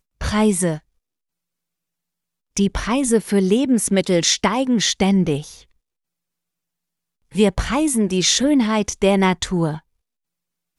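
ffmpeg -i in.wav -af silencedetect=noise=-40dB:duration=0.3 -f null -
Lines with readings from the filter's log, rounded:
silence_start: 0.79
silence_end: 2.57 | silence_duration: 1.78
silence_start: 5.62
silence_end: 7.32 | silence_duration: 1.70
silence_start: 9.79
silence_end: 10.79 | silence_duration: 1.00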